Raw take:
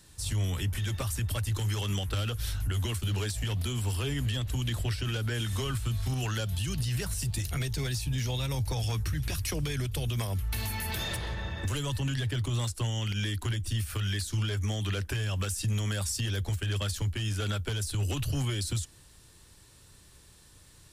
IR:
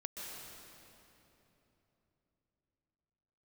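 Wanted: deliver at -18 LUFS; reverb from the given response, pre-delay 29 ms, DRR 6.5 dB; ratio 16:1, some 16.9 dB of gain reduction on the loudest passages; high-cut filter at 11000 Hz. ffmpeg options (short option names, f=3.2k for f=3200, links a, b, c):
-filter_complex "[0:a]lowpass=11k,acompressor=threshold=-44dB:ratio=16,asplit=2[a][b];[1:a]atrim=start_sample=2205,adelay=29[c];[b][c]afir=irnorm=-1:irlink=0,volume=-6dB[d];[a][d]amix=inputs=2:normalize=0,volume=29dB"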